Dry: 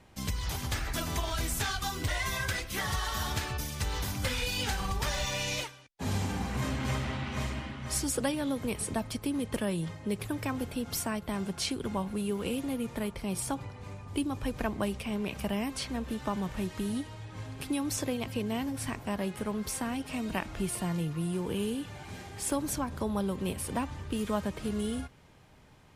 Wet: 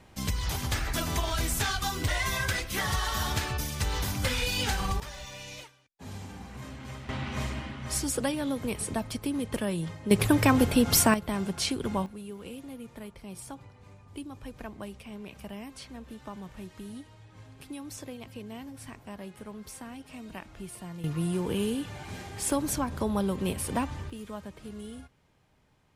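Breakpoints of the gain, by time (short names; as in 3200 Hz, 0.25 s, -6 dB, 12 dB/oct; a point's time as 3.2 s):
+3 dB
from 5 s -10 dB
from 7.09 s +1 dB
from 10.11 s +12 dB
from 11.14 s +3 dB
from 12.06 s -9 dB
from 21.04 s +3 dB
from 24.1 s -9 dB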